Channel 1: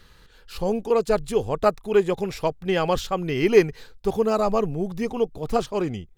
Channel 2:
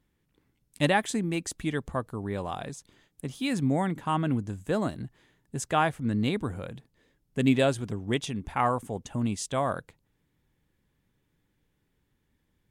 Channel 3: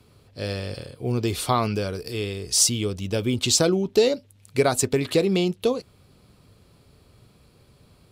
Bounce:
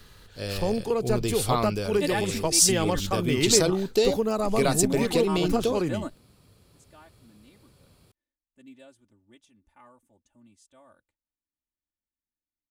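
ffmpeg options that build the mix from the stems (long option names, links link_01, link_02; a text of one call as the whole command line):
ffmpeg -i stem1.wav -i stem2.wav -i stem3.wav -filter_complex "[0:a]acrossover=split=240[link_01][link_02];[link_02]acompressor=threshold=-23dB:ratio=6[link_03];[link_01][link_03]amix=inputs=2:normalize=0,volume=-0.5dB,asplit=2[link_04][link_05];[1:a]aecho=1:1:3.4:0.96,adelay=1200,volume=-8dB[link_06];[2:a]volume=-4dB[link_07];[link_05]apad=whole_len=613176[link_08];[link_06][link_08]sidechaingate=range=-23dB:threshold=-39dB:ratio=16:detection=peak[link_09];[link_04][link_09][link_07]amix=inputs=3:normalize=0,highshelf=frequency=6000:gain=6.5" out.wav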